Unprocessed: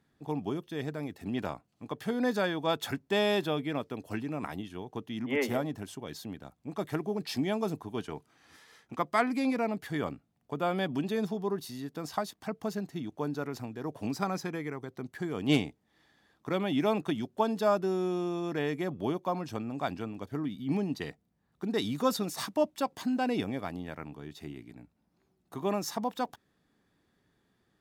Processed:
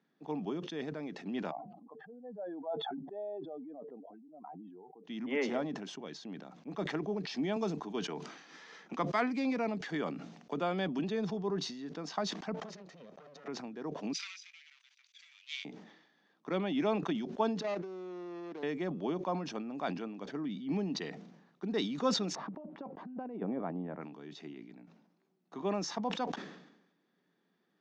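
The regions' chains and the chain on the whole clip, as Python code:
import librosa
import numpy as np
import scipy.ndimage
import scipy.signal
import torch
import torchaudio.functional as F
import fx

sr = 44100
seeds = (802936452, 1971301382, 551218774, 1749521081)

y = fx.chain(x, sr, fx.spec_expand(power=2.6),
    fx.bandpass_q(hz=760.0, q=4.8),
    fx.sustainer(db_per_s=23.0), at=(1.51, 5.04))
y = fx.chain(y, sr, fx.high_shelf(hz=4600.0, db=7.0),
    fx.band_squash(depth_pct=40), at=(7.56, 10.99))
y = fx.chain(y, sr, fx.lower_of_two(delay_ms=1.6),
    fx.over_compress(threshold_db=-45.0, ratio=-0.5), at=(12.54, 13.48))
y = fx.chain(y, sr, fx.lower_of_two(delay_ms=0.85),
    fx.cheby2_highpass(hz=420.0, order=4, stop_db=80), at=(14.13, 15.65))
y = fx.chain(y, sr, fx.median_filter(points=41),
    fx.highpass(hz=290.0, slope=12),
    fx.level_steps(step_db=10), at=(17.61, 18.63))
y = fx.chain(y, sr, fx.lowpass(hz=1000.0, slope=12),
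    fx.over_compress(threshold_db=-34.0, ratio=-0.5), at=(22.35, 24.01))
y = scipy.signal.sosfilt(scipy.signal.cheby1(4, 1.0, [170.0, 6300.0], 'bandpass', fs=sr, output='sos'), y)
y = fx.high_shelf(y, sr, hz=5100.0, db=-5.5)
y = fx.sustainer(y, sr, db_per_s=63.0)
y = y * librosa.db_to_amplitude(-3.0)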